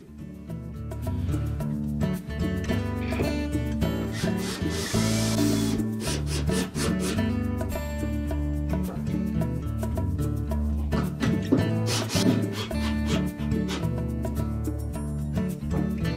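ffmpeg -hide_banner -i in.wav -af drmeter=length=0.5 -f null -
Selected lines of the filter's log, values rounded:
Channel 1: DR: 12.1
Overall DR: 12.1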